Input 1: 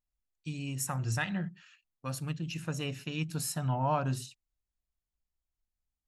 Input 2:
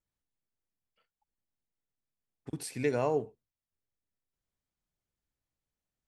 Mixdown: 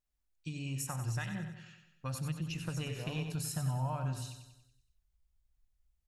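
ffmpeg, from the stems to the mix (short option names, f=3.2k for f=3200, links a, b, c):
-filter_complex "[0:a]acompressor=threshold=-36dB:ratio=6,volume=0dB,asplit=3[a][b][c];[b]volume=-8dB[d];[1:a]adelay=50,volume=-7dB,asplit=2[e][f];[f]volume=-15.5dB[g];[c]apad=whole_len=270296[h];[e][h]sidechaincompress=threshold=-49dB:ratio=3:attack=16:release=662[i];[d][g]amix=inputs=2:normalize=0,aecho=0:1:94|188|282|376|470|564|658:1|0.51|0.26|0.133|0.0677|0.0345|0.0176[j];[a][i][j]amix=inputs=3:normalize=0,asubboost=boost=5:cutoff=120"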